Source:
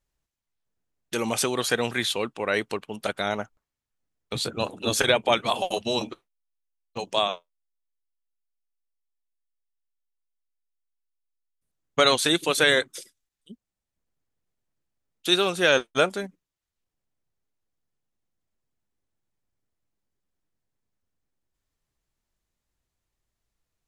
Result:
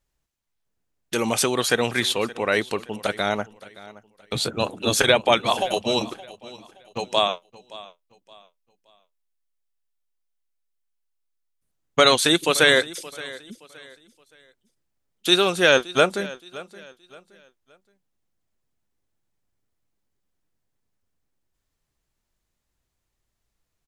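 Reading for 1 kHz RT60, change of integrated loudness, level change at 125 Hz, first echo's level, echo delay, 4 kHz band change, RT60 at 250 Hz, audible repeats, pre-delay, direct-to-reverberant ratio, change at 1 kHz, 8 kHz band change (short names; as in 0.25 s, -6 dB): none, +3.5 dB, +3.5 dB, -19.0 dB, 0.571 s, +3.5 dB, none, 2, none, none, +3.5 dB, +3.5 dB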